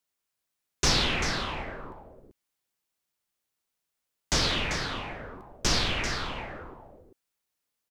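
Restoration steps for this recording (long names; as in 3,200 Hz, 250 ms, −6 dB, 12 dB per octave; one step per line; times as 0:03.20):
clipped peaks rebuilt −13.5 dBFS
echo removal 391 ms −9 dB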